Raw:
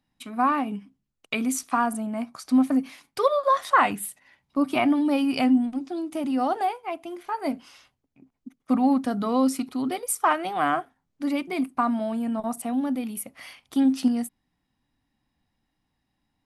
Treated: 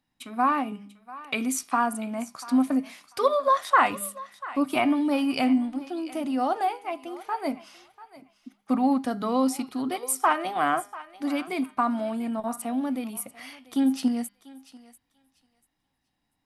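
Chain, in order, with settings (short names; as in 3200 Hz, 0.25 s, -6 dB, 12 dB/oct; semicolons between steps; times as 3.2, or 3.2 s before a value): low shelf 230 Hz -5 dB; de-hum 203.2 Hz, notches 27; on a send: thinning echo 0.691 s, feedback 20%, high-pass 670 Hz, level -16 dB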